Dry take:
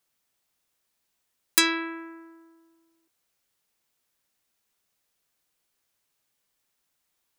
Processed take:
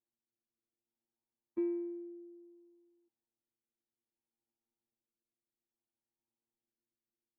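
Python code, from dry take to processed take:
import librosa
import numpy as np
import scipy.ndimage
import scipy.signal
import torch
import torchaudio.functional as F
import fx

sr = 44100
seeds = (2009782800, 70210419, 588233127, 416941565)

y = fx.rotary(x, sr, hz=0.6)
y = fx.robotise(y, sr, hz=115.0)
y = fx.formant_cascade(y, sr, vowel='u')
y = y * librosa.db_to_amplitude(5.0)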